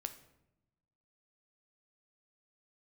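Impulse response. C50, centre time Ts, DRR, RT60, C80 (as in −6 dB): 12.5 dB, 8 ms, 8.0 dB, 0.90 s, 15.5 dB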